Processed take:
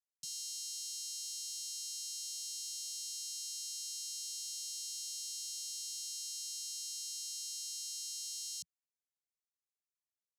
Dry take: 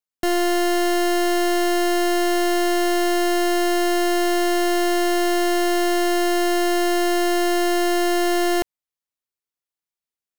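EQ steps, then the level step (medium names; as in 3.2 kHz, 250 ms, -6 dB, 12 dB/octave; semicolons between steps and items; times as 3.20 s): elliptic high-pass 170 Hz, stop band 70 dB; inverse Chebyshev band-stop 290–1800 Hz, stop band 70 dB; low-pass 3.4 kHz 12 dB/octave; +11.0 dB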